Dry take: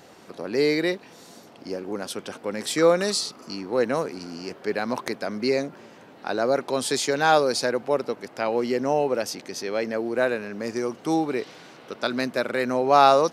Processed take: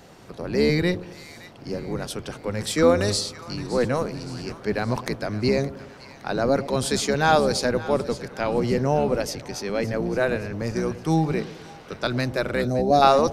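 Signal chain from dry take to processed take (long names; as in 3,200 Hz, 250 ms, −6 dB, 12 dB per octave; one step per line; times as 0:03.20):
sub-octave generator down 1 octave, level +2 dB
gain on a spectral selection 0:12.61–0:13.02, 810–3,400 Hz −16 dB
echo with a time of its own for lows and highs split 820 Hz, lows 106 ms, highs 567 ms, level −15.5 dB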